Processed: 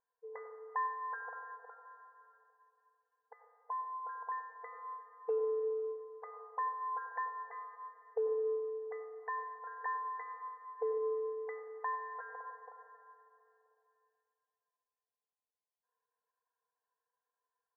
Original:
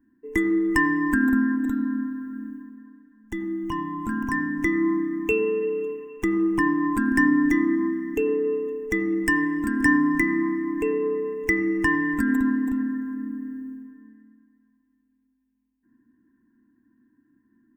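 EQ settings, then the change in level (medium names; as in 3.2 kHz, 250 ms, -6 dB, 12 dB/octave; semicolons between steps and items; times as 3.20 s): Gaussian low-pass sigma 9 samples; brick-wall FIR high-pass 450 Hz; distance through air 410 m; +3.5 dB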